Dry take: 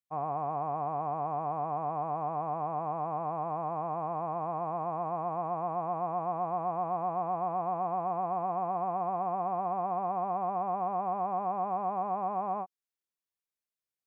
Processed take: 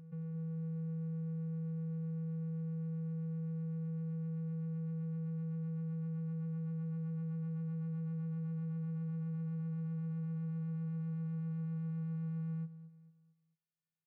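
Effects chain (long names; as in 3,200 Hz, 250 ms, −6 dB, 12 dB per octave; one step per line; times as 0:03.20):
elliptic band-stop filter 290–1,600 Hz, stop band 40 dB
low-shelf EQ 160 Hz −4.5 dB
channel vocoder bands 8, square 162 Hz
high-frequency loss of the air 210 metres
echo ahead of the sound 213 ms −20.5 dB
brickwall limiter −52.5 dBFS, peak gain reduction 9 dB
on a send: repeating echo 222 ms, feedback 40%, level −15 dB
on the sum: level +15.5 dB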